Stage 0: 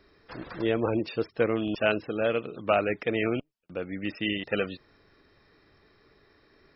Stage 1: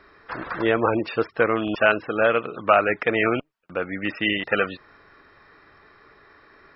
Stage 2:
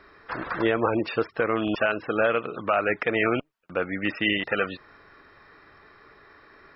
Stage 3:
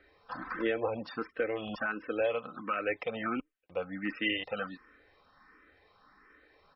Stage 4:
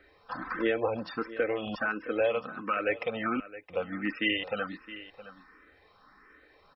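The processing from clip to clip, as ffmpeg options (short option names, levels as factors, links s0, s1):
-filter_complex "[0:a]equalizer=f=1300:t=o:w=2:g=13,asplit=2[s0][s1];[s1]alimiter=limit=0.335:level=0:latency=1:release=320,volume=1.12[s2];[s0][s2]amix=inputs=2:normalize=0,highshelf=f=4400:g=-5,volume=0.596"
-af "alimiter=limit=0.282:level=0:latency=1:release=143"
-filter_complex "[0:a]aecho=1:1:3.9:0.46,asplit=2[s0][s1];[s1]afreqshift=1.4[s2];[s0][s2]amix=inputs=2:normalize=1,volume=0.447"
-af "aecho=1:1:666:0.168,volume=1.41"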